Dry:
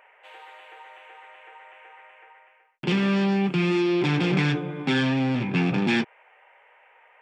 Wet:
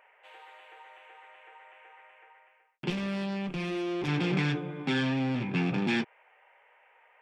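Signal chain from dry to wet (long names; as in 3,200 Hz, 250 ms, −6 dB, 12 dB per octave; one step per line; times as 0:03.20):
0:02.90–0:04.08: tube saturation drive 23 dB, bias 0.5
level −5.5 dB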